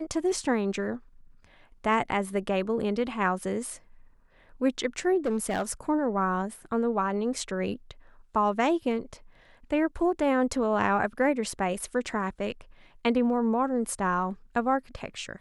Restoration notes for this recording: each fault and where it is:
5.25–5.71 s: clipped -22.5 dBFS

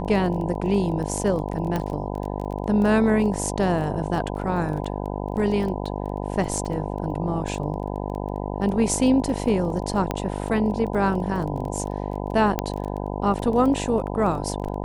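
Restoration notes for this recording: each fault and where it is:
buzz 50 Hz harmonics 20 -29 dBFS
crackle 16 per s -30 dBFS
1.76 s: pop -13 dBFS
10.11 s: pop -10 dBFS
12.59 s: pop -8 dBFS

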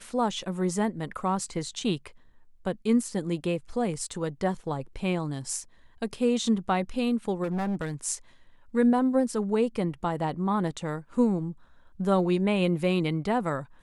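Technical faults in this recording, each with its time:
7.43–7.92 s: clipped -25.5 dBFS

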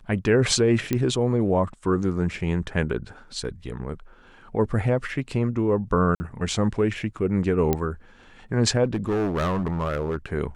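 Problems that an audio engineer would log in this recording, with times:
0.93 s: pop -10 dBFS
6.15–6.20 s: dropout 50 ms
7.73 s: pop -9 dBFS
8.84–10.17 s: clipped -20.5 dBFS

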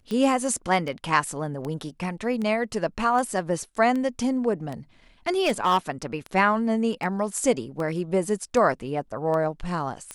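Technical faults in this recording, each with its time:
tick 78 rpm -20 dBFS
5.43–5.90 s: clipped -16 dBFS

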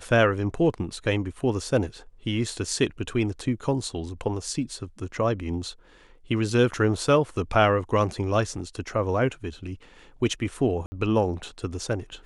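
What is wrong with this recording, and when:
10.86–10.92 s: dropout 60 ms

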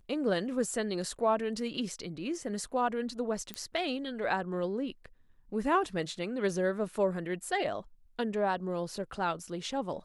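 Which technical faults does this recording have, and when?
3.54 s: pop -21 dBFS

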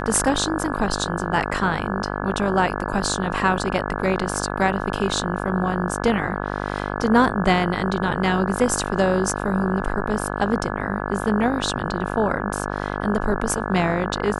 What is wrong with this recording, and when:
buzz 50 Hz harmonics 34 -27 dBFS

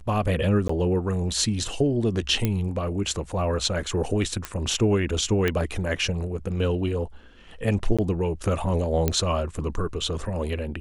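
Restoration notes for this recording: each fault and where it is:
0.68–0.69 s: dropout 14 ms
2.45 s: pop -10 dBFS
4.45 s: pop -13 dBFS
5.48 s: pop -10 dBFS
7.97–7.99 s: dropout 16 ms
9.08 s: pop -8 dBFS

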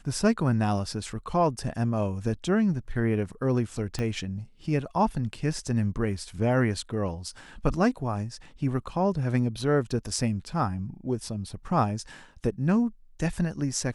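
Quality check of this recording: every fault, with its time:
3.99 s: pop -18 dBFS

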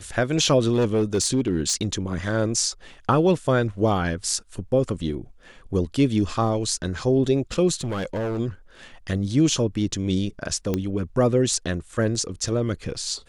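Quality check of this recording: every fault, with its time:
0.72–1.94 s: clipped -16 dBFS
7.81–8.39 s: clipped -23.5 dBFS
10.74 s: pop -11 dBFS

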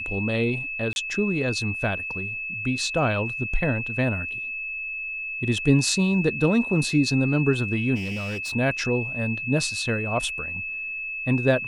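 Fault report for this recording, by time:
whine 2.6 kHz -29 dBFS
0.93–0.96 s: dropout 31 ms
7.95–8.53 s: clipped -26.5 dBFS

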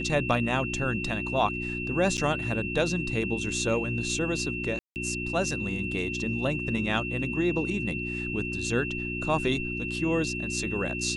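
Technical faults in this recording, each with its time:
hum 60 Hz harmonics 6 -35 dBFS
whine 2.7 kHz -33 dBFS
2.17–2.18 s: dropout 8.8 ms
4.79–4.96 s: dropout 169 ms

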